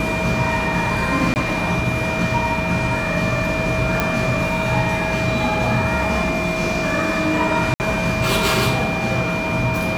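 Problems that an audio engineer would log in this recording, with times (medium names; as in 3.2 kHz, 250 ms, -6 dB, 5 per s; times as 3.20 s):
whine 2.4 kHz -25 dBFS
1.34–1.36 s: dropout 19 ms
4.00 s: pop -4 dBFS
7.74–7.80 s: dropout 59 ms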